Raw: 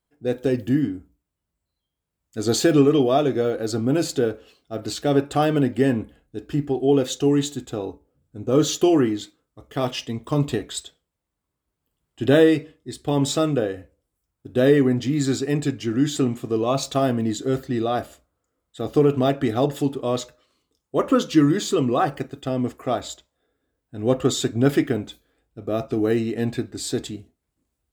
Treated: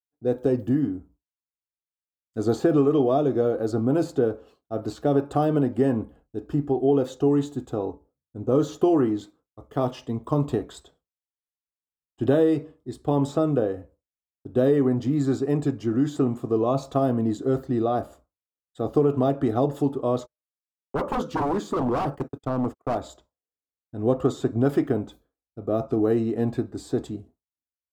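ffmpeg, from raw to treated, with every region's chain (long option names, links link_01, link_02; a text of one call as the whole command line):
ffmpeg -i in.wav -filter_complex "[0:a]asettb=1/sr,asplit=3[link_01][link_02][link_03];[link_01]atrim=end=20.184[link_04];[link_02]atrim=start=20.18:end=23.08,asetpts=PTS-STARTPTS,afade=type=in:duration=0.004:curve=qsin,afade=type=out:start_time=2.896:duration=0.004:curve=qsin,agate=range=-43dB:threshold=-39dB:ratio=16:release=100:detection=peak,aeval=exprs='0.112*(abs(mod(val(0)/0.112+3,4)-2)-1)':channel_layout=same[link_05];[link_03]atrim=start=23.076[link_06];[link_04][link_05]acrossfade=duration=0.004:curve1=hsin:curve2=qsin[link_07];[link_07][link_06]acrossfade=duration=0.004:curve1=qsin:curve2=hsin,agate=range=-33dB:threshold=-48dB:ratio=3:detection=peak,highshelf=frequency=1500:width_type=q:width=1.5:gain=-10,acrossover=split=500|2600[link_08][link_09][link_10];[link_08]acompressor=threshold=-19dB:ratio=4[link_11];[link_09]acompressor=threshold=-25dB:ratio=4[link_12];[link_10]acompressor=threshold=-45dB:ratio=4[link_13];[link_11][link_12][link_13]amix=inputs=3:normalize=0" out.wav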